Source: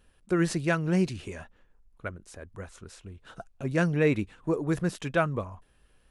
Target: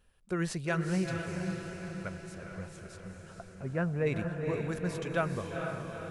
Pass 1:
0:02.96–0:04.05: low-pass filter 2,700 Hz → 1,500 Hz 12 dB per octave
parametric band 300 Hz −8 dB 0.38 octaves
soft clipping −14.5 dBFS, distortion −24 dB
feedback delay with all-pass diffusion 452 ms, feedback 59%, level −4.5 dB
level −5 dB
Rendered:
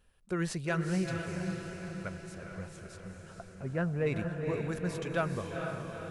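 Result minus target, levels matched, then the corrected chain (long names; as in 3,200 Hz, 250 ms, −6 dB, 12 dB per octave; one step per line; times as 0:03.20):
soft clipping: distortion +12 dB
0:02.96–0:04.05: low-pass filter 2,700 Hz → 1,500 Hz 12 dB per octave
parametric band 300 Hz −8 dB 0.38 octaves
soft clipping −8 dBFS, distortion −36 dB
feedback delay with all-pass diffusion 452 ms, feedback 59%, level −4.5 dB
level −5 dB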